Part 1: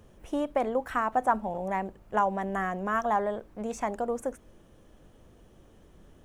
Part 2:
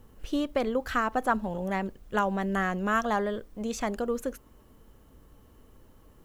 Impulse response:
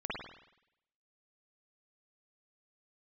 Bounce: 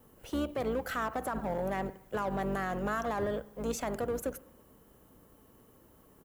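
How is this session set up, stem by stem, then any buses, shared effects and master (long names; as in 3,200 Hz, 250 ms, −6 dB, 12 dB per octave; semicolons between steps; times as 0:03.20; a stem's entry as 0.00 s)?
−11.0 dB, 0.00 s, no send, leveller curve on the samples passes 2; wave folding −23 dBFS
0.0 dB, 1.5 ms, send −20.5 dB, sub-octave generator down 2 octaves, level +2 dB; high-shelf EQ 3,900 Hz +7.5 dB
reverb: on, RT60 0.85 s, pre-delay 48 ms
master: high-pass filter 250 Hz 6 dB per octave; parametric band 4,700 Hz −8.5 dB 2.7 octaves; brickwall limiter −24.5 dBFS, peak gain reduction 11 dB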